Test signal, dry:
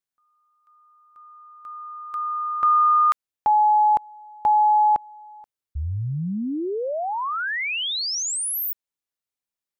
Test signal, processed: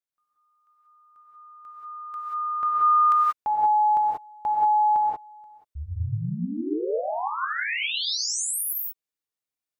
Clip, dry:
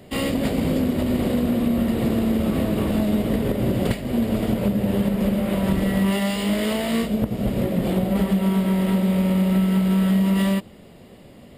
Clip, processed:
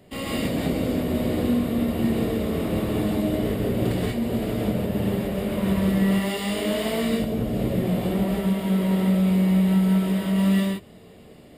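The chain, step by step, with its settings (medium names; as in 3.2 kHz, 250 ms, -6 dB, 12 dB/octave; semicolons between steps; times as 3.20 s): gated-style reverb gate 210 ms rising, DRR -4.5 dB; trim -7.5 dB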